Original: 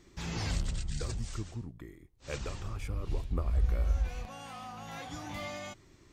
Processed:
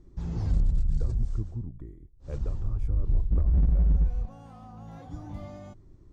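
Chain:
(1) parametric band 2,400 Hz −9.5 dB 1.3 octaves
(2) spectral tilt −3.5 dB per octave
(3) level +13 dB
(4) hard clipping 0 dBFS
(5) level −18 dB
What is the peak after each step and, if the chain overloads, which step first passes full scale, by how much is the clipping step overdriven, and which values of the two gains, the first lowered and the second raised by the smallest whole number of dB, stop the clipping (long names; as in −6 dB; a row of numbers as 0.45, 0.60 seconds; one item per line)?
−18.5, −4.0, +9.0, 0.0, −18.0 dBFS
step 3, 9.0 dB
step 3 +4 dB, step 5 −9 dB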